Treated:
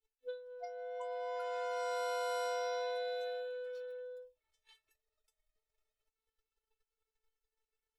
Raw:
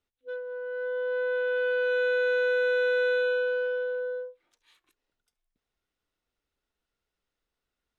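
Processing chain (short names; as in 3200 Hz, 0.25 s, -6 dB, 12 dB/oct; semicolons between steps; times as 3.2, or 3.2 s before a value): resonator 440 Hz, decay 0.21 s, harmonics all, mix 100%; transient shaper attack +12 dB, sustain -7 dB; echoes that change speed 0.433 s, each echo +6 st, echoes 3; gain +7 dB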